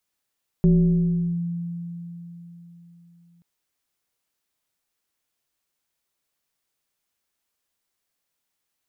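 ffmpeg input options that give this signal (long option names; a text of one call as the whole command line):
ffmpeg -f lavfi -i "aevalsrc='0.251*pow(10,-3*t/3.94)*sin(2*PI*171*t+0.58*clip(1-t/0.76,0,1)*sin(2*PI*1.18*171*t))':duration=2.78:sample_rate=44100" out.wav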